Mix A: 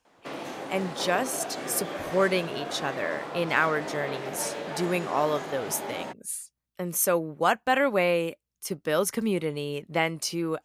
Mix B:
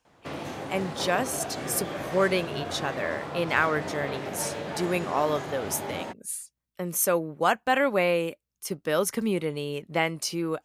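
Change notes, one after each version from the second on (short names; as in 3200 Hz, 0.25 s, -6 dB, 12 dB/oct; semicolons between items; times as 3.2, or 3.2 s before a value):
background: remove HPF 230 Hz 12 dB/oct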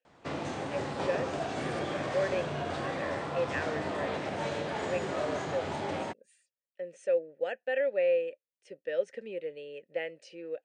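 speech: add vowel filter e; master: add brick-wall FIR low-pass 9400 Hz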